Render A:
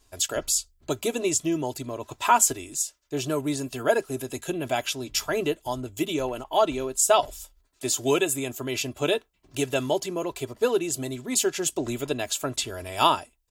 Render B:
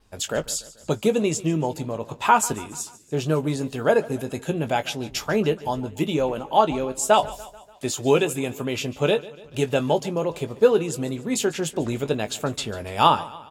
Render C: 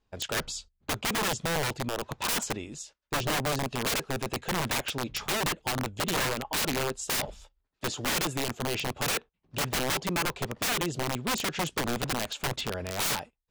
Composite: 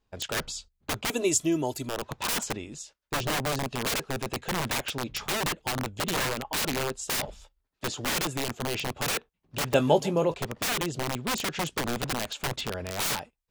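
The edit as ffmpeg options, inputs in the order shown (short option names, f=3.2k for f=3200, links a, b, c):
-filter_complex "[2:a]asplit=3[a][b][c];[a]atrim=end=1.102[d];[0:a]atrim=start=1.098:end=1.892[e];[b]atrim=start=1.888:end=9.742[f];[1:a]atrim=start=9.738:end=10.342[g];[c]atrim=start=10.338[h];[d][e]acrossfade=d=0.004:c1=hsin:c2=hsin[i];[i][f]acrossfade=d=0.004:c1=hsin:c2=hsin[j];[j][g]acrossfade=d=0.004:c1=hsin:c2=hsin[k];[k][h]acrossfade=d=0.004:c1=hsin:c2=hsin"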